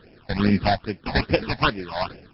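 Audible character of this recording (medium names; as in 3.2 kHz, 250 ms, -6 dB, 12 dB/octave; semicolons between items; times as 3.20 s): aliases and images of a low sample rate 2.1 kHz, jitter 20%; phasing stages 8, 2.4 Hz, lowest notch 360–1200 Hz; MP3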